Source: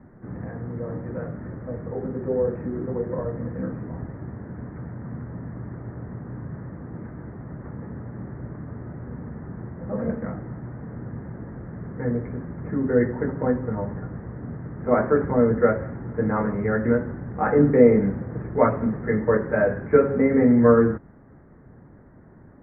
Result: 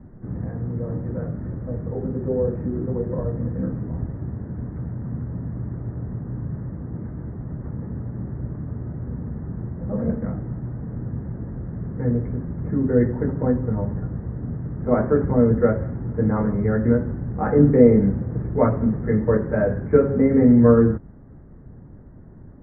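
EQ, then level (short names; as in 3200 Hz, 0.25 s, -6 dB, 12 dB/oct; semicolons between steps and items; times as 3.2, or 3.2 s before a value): tilt -3 dB/oct; -3.0 dB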